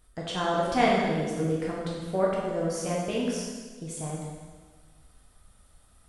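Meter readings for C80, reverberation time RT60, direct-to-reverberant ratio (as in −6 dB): 1.5 dB, 1.5 s, −5.0 dB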